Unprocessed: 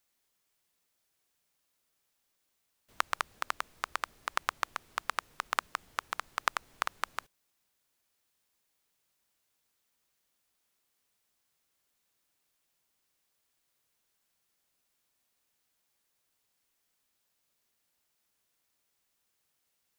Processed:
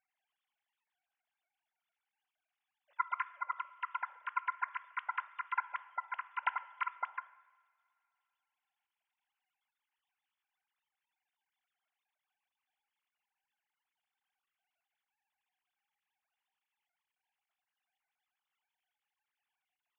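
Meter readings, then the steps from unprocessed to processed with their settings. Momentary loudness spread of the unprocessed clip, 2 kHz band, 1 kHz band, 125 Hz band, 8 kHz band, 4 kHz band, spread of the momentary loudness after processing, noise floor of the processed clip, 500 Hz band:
5 LU, -4.0 dB, -1.5 dB, no reading, under -30 dB, -16.5 dB, 5 LU, under -85 dBFS, -16.0 dB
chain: formants replaced by sine waves; two-slope reverb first 1 s, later 3.2 s, from -20 dB, DRR 13.5 dB; trim -3 dB

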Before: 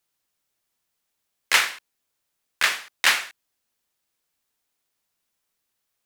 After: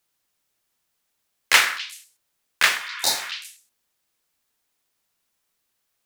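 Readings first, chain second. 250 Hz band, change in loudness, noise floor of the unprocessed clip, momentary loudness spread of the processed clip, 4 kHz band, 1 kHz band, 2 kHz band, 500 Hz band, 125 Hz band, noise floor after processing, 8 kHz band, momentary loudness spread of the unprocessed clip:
+3.0 dB, +1.5 dB, -79 dBFS, 16 LU, +2.0 dB, +2.0 dB, +1.0 dB, +3.0 dB, no reading, -76 dBFS, +3.0 dB, 7 LU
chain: modulation noise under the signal 22 dB; repeats whose band climbs or falls 127 ms, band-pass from 1.4 kHz, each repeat 1.4 oct, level -10 dB; spectral replace 2.80–3.23 s, 960–3600 Hz after; trim +3 dB

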